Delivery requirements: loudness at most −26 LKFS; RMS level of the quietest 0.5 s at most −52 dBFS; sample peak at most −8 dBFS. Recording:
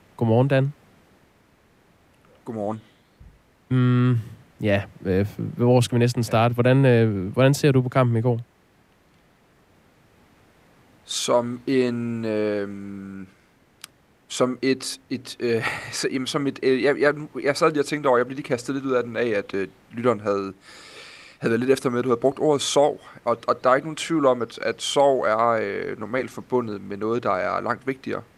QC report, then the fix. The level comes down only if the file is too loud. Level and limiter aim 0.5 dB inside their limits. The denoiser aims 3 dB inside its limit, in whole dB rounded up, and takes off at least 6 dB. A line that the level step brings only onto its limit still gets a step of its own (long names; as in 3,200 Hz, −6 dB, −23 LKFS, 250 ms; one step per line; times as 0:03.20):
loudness −22.5 LKFS: out of spec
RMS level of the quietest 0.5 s −59 dBFS: in spec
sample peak −4.5 dBFS: out of spec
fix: level −4 dB